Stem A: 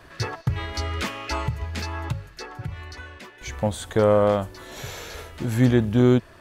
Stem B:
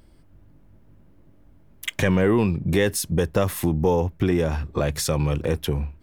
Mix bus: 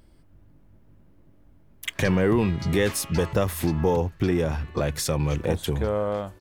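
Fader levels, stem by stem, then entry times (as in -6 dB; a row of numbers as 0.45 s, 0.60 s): -8.0 dB, -2.0 dB; 1.85 s, 0.00 s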